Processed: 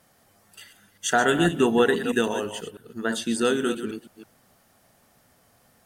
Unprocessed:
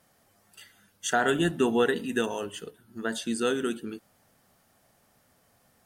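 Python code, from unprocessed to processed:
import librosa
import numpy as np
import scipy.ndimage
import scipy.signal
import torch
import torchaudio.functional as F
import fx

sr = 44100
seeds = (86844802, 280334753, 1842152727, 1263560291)

y = fx.reverse_delay(x, sr, ms=163, wet_db=-10.0)
y = y * 10.0 ** (4.0 / 20.0)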